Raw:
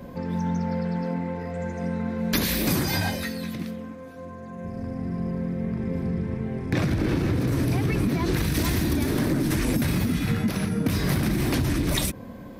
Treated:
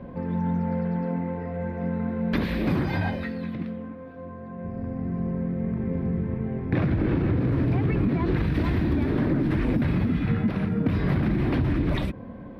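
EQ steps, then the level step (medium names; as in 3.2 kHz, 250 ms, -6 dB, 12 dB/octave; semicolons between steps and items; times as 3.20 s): distance through air 450 m; +1.0 dB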